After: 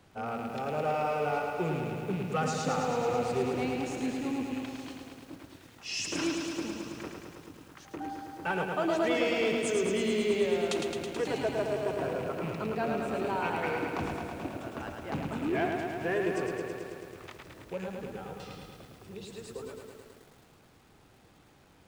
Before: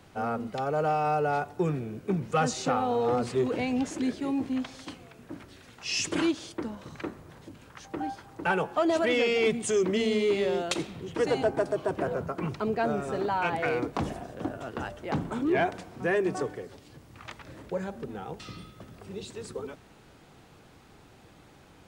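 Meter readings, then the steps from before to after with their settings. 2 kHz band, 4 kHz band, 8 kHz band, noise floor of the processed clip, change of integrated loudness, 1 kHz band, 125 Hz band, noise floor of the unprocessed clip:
-2.5 dB, -2.5 dB, -2.5 dB, -60 dBFS, -3.0 dB, -3.5 dB, -2.5 dB, -55 dBFS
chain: rattling part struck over -36 dBFS, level -32 dBFS; lo-fi delay 0.108 s, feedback 80%, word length 9-bit, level -4.5 dB; gain -5.5 dB

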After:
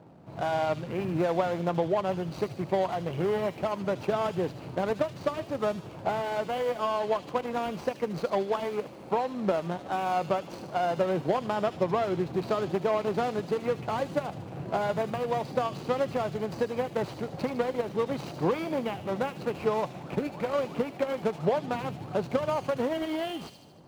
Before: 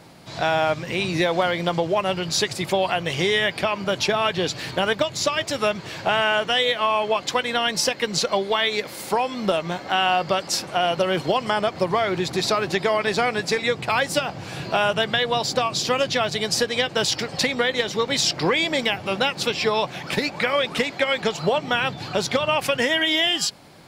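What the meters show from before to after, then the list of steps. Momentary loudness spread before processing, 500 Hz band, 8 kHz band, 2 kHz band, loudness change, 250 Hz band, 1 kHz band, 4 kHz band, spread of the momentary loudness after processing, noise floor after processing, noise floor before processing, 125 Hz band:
4 LU, -5.0 dB, under -20 dB, -16.0 dB, -8.0 dB, -4.0 dB, -7.0 dB, -21.0 dB, 5 LU, -44 dBFS, -38 dBFS, -4.0 dB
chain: median filter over 25 samples; HPF 61 Hz; high shelf 3100 Hz -10.5 dB; thin delay 76 ms, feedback 60%, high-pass 3400 Hz, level -5 dB; gain -3.5 dB

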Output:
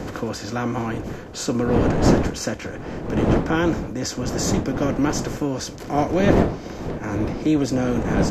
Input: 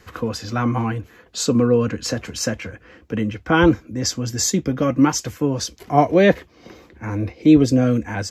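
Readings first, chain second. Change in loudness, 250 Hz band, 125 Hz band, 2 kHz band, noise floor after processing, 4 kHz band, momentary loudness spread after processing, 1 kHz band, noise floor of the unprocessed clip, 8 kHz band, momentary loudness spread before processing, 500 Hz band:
-3.0 dB, -2.5 dB, -1.0 dB, -3.5 dB, -35 dBFS, -4.5 dB, 11 LU, -3.0 dB, -52 dBFS, -5.5 dB, 12 LU, -2.0 dB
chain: per-bin compression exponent 0.6; wind noise 380 Hz -16 dBFS; gain -8.5 dB

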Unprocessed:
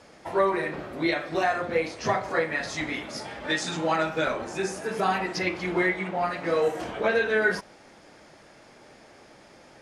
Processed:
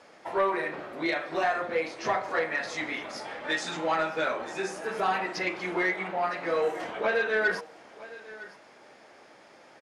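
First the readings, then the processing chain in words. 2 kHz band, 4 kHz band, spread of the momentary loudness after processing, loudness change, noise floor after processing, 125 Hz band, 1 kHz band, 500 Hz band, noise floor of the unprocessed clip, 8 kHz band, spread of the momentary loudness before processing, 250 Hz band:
-1.5 dB, -3.0 dB, 14 LU, -2.5 dB, -54 dBFS, -9.5 dB, -1.5 dB, -3.0 dB, -53 dBFS, -5.0 dB, 6 LU, -5.5 dB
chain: HPF 550 Hz 6 dB/oct; high shelf 3800 Hz -8.5 dB; soft clip -18 dBFS, distortion -21 dB; on a send: echo 0.96 s -18 dB; on the sum: gain +1.5 dB

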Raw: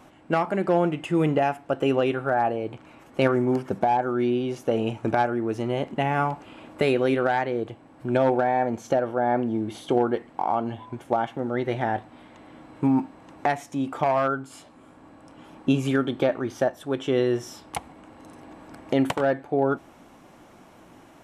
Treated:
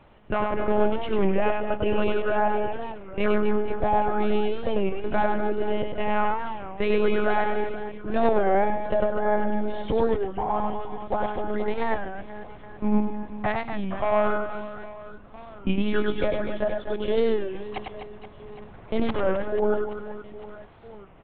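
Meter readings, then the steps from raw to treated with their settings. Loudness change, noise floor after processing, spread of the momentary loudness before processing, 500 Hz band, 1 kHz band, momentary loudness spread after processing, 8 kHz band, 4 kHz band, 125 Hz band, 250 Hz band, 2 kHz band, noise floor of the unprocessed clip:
-1.5 dB, -45 dBFS, 9 LU, 0.0 dB, -1.0 dB, 16 LU, n/a, -1.0 dB, -5.0 dB, -2.5 dB, 0.0 dB, -52 dBFS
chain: monotone LPC vocoder at 8 kHz 210 Hz; reverse bouncing-ball echo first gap 0.1 s, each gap 1.5×, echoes 5; record warp 33 1/3 rpm, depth 160 cents; gain -2.5 dB

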